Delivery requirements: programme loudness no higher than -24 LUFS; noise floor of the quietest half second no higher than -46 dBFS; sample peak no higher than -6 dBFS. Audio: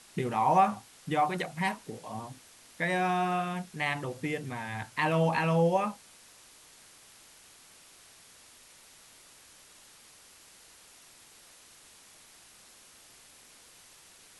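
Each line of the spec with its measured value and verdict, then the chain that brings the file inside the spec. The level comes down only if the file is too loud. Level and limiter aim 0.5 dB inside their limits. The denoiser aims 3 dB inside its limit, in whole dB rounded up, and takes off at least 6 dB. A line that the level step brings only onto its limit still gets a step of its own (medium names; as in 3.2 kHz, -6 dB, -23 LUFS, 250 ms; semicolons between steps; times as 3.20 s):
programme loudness -30.0 LUFS: pass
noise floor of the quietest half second -56 dBFS: pass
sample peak -12.5 dBFS: pass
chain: none needed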